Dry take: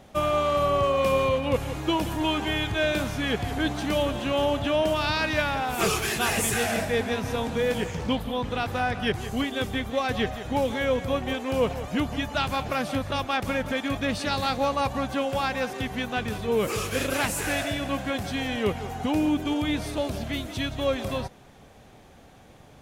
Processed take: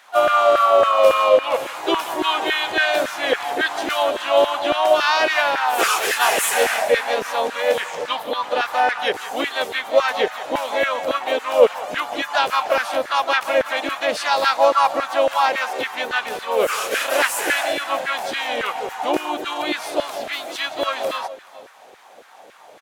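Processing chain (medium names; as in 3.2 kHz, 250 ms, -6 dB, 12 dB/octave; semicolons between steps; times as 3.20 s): delay 426 ms -21.5 dB; harmony voices +3 st -6 dB; LFO high-pass saw down 3.6 Hz 420–1600 Hz; trim +4.5 dB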